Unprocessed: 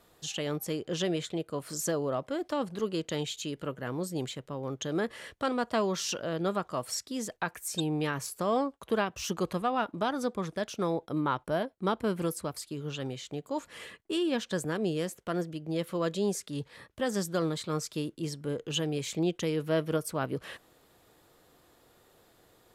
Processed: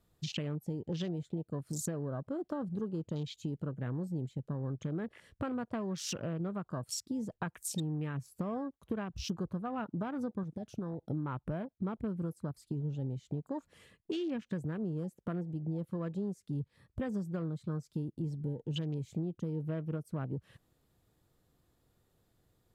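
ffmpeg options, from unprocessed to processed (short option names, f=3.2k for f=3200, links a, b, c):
-filter_complex "[0:a]asettb=1/sr,asplit=3[a][b][c];[a]atrim=end=10.434[d];[b]atrim=start=10.43:end=11.09,asetpts=PTS-STARTPTS,afade=t=in:d=0.004:c=qsin,afade=t=out:st=0.656:d=0.004:c=qsin,acompressor=threshold=-38dB:ratio=4:attack=3.2:release=140:knee=1:detection=peak[e];[c]atrim=start=11.086[f];[d][e]acrossfade=d=0.004:c1=hsin:c2=qsin[g];[g][f]acrossfade=d=0.004:c1=qsin:c2=hsin,afwtdn=0.01,bass=f=250:g=15,treble=f=4k:g=3,acompressor=threshold=-34dB:ratio=6"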